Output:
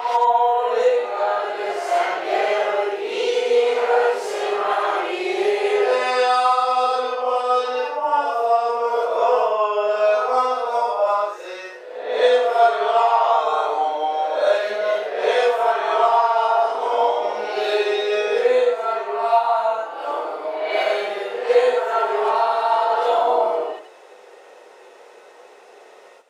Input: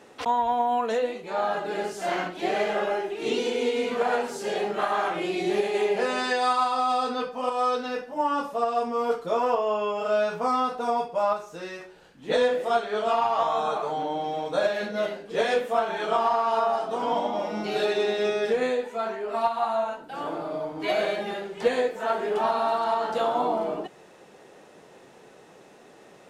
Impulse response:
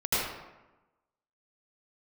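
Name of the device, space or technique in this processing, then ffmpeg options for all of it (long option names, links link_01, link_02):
ghost voice: -filter_complex "[0:a]areverse[link_01];[1:a]atrim=start_sample=2205[link_02];[link_01][link_02]afir=irnorm=-1:irlink=0,areverse,highpass=frequency=430:width=0.5412,highpass=frequency=430:width=1.3066,volume=-5dB"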